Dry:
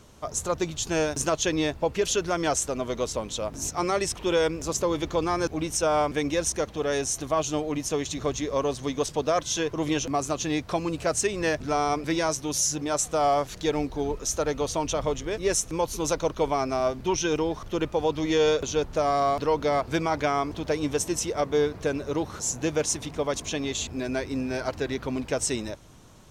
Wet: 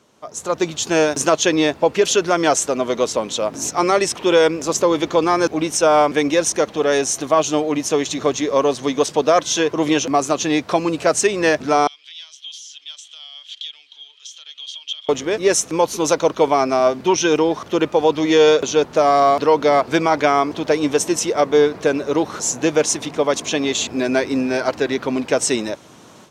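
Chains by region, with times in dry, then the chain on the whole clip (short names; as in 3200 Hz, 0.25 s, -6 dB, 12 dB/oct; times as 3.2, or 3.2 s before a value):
11.87–15.09 compressor, threshold -28 dBFS + ladder band-pass 3300 Hz, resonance 90%
whole clip: high shelf 8600 Hz -8 dB; AGC gain up to 14.5 dB; HPF 210 Hz 12 dB/oct; gain -2 dB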